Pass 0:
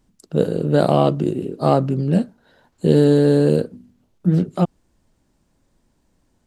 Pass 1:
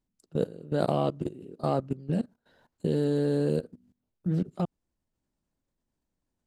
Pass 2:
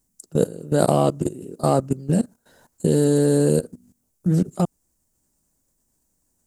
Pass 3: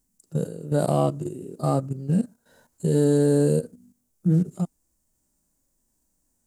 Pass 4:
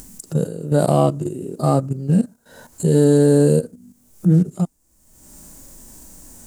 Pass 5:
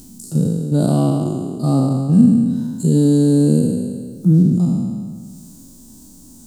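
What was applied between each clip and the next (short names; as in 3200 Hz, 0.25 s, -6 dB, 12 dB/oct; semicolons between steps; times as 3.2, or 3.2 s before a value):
level quantiser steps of 19 dB; gain -6.5 dB
resonant high shelf 5200 Hz +13 dB, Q 1.5; gain +8.5 dB
harmonic-percussive split percussive -17 dB; in parallel at +0.5 dB: limiter -19 dBFS, peak gain reduction 10 dB; on the sum: gain -4 dB
upward compressor, threshold -28 dBFS; gain +6 dB
spectral trails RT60 1.76 s; graphic EQ 125/250/500/2000/4000 Hz +4/+12/-5/-12/+7 dB; gain -6 dB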